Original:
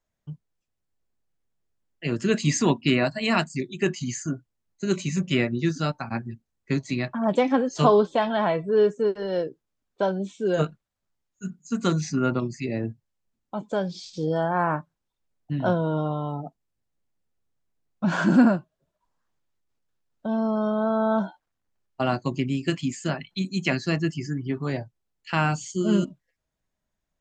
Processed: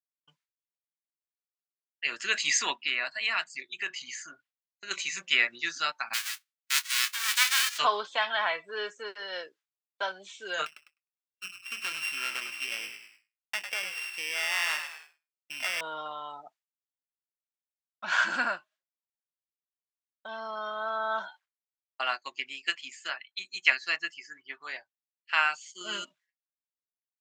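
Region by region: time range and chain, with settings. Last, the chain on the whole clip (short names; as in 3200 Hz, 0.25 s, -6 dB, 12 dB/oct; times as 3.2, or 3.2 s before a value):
2.75–4.91 compressor 1.5:1, threshold -34 dBFS + bell 6900 Hz -6.5 dB 1.1 oct
6.13–7.77 spectral whitening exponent 0.1 + Chebyshev high-pass 1100 Hz, order 3 + transient shaper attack -7 dB, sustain +1 dB
10.66–15.81 sample sorter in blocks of 16 samples + compressor 10:1, threshold -26 dBFS + frequency-shifting echo 0.102 s, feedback 46%, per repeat -62 Hz, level -8 dB
22.01–25.81 tone controls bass -7 dB, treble -2 dB + upward expander, over -43 dBFS
whole clip: expander -45 dBFS; Chebyshev high-pass 1900 Hz, order 2; high shelf 6200 Hz -10 dB; gain +7.5 dB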